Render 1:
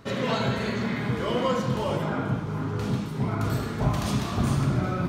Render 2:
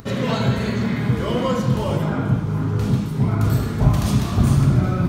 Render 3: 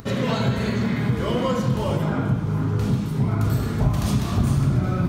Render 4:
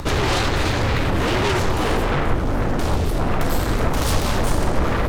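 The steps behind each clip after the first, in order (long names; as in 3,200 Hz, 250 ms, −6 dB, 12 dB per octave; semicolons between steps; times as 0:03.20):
low-shelf EQ 210 Hz +10.5 dB; upward compression, threshold −41 dBFS; high-shelf EQ 8,700 Hz +8.5 dB; level +1.5 dB
downward compressor 2 to 1, threshold −19 dBFS, peak gain reduction 6 dB
in parallel at −11 dB: sine wavefolder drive 18 dB, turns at −8.5 dBFS; on the sum: frequency shifter −120 Hz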